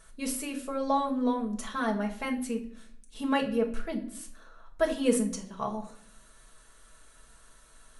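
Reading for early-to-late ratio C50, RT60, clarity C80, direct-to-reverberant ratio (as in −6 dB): 11.0 dB, 0.60 s, 15.5 dB, −0.5 dB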